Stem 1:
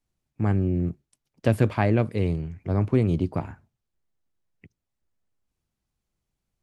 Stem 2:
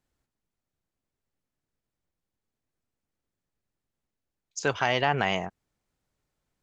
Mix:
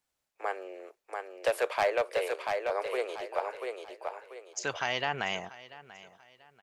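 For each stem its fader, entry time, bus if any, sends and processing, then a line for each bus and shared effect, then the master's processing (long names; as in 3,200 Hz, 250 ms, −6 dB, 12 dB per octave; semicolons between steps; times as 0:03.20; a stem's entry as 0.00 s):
+1.5 dB, 0.00 s, no send, echo send −4.5 dB, Butterworth high-pass 470 Hz 48 dB per octave; gain into a clipping stage and back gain 22 dB
−6.5 dB, 0.00 s, no send, echo send −18 dB, spectral tilt +2 dB per octave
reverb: not used
echo: repeating echo 688 ms, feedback 33%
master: no processing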